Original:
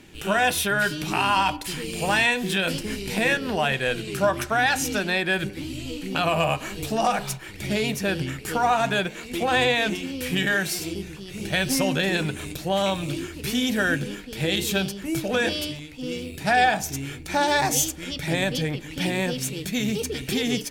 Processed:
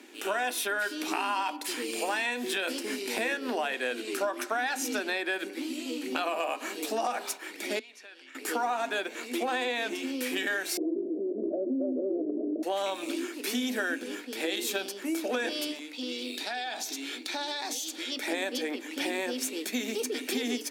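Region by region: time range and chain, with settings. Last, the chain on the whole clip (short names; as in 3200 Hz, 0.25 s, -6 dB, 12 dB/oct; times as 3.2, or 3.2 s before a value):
7.79–8.35 LPF 2700 Hz + differentiator + compressor 4:1, threshold -44 dBFS
10.77–12.63 steep low-pass 650 Hz 96 dB/oct + comb 3 ms, depth 31% + fast leveller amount 70%
15.93–18.12 bell 3900 Hz +14 dB 0.91 oct + compressor 12:1, threshold -29 dBFS
whole clip: Chebyshev high-pass 240 Hz, order 6; bell 3000 Hz -3 dB 0.3 oct; compressor 4:1, threshold -28 dBFS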